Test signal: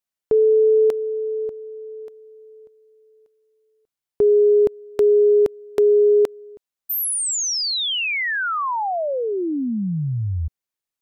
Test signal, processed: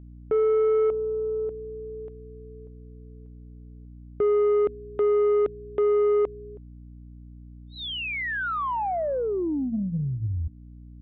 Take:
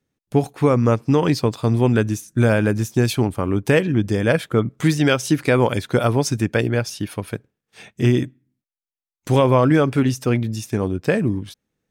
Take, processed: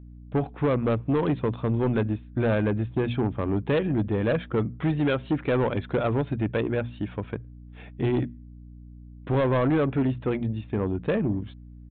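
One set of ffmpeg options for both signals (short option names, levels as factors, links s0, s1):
-af "lowpass=f=1500:p=1,lowshelf=f=120:g=-2.5,bandreject=f=60:t=h:w=6,bandreject=f=120:t=h:w=6,bandreject=f=180:t=h:w=6,bandreject=f=240:t=h:w=6,aeval=exprs='val(0)+0.00891*(sin(2*PI*60*n/s)+sin(2*PI*2*60*n/s)/2+sin(2*PI*3*60*n/s)/3+sin(2*PI*4*60*n/s)/4+sin(2*PI*5*60*n/s)/5)':c=same,aresample=8000,asoftclip=type=tanh:threshold=0.158,aresample=44100,volume=0.794"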